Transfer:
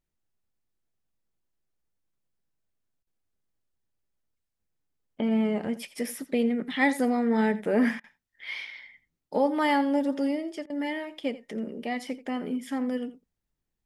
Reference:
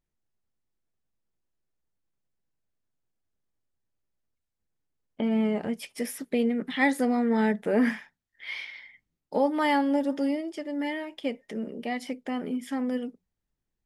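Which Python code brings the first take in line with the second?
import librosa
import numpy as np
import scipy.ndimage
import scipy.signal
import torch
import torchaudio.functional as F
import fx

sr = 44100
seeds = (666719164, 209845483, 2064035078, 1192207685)

y = fx.fix_interpolate(x, sr, at_s=(3.03, 8.0, 10.66), length_ms=38.0)
y = fx.fix_echo_inverse(y, sr, delay_ms=85, level_db=-16.5)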